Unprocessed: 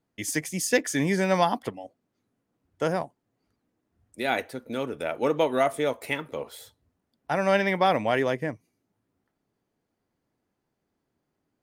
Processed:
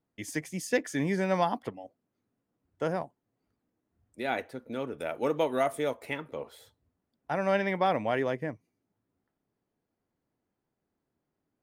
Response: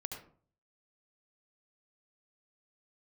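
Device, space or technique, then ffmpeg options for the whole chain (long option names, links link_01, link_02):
behind a face mask: -filter_complex "[0:a]highshelf=frequency=3400:gain=-8,asettb=1/sr,asplit=3[link_01][link_02][link_03];[link_01]atrim=end=4.984[link_04];[link_02]atrim=start=4.98:end=5.94,asetpts=PTS-STARTPTS,afade=type=in:duration=0.004:curve=qsin,afade=type=out:start_time=0.956:duration=0.004:curve=qsin,highshelf=frequency=6200:gain=11[link_05];[link_03]atrim=start=5.936[link_06];[link_04][link_05]acrossfade=duration=0.004:curve1=hsin:curve2=qsin[link_07];[link_07][link_06]acrossfade=duration=0.004:curve1=qsin:curve2=hsin,volume=-4dB"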